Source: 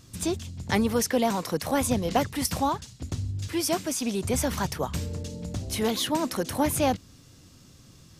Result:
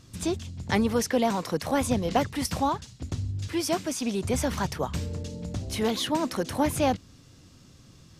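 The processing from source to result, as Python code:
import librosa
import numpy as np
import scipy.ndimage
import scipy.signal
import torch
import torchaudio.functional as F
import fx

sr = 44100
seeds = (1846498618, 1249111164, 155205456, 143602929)

y = fx.high_shelf(x, sr, hz=9800.0, db=-10.5)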